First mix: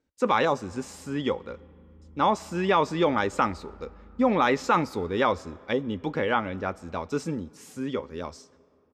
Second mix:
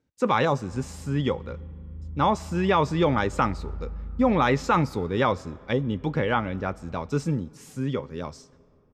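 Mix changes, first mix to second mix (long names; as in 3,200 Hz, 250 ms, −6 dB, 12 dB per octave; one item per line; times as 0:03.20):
background: remove resonant band-pass 410 Hz, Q 0.75
master: add parametric band 130 Hz +13 dB 0.71 octaves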